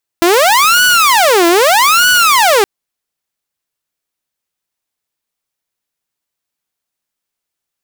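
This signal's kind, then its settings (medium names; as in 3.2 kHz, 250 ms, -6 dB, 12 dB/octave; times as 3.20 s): siren wail 337–1480 Hz 0.8 per s saw -4 dBFS 2.42 s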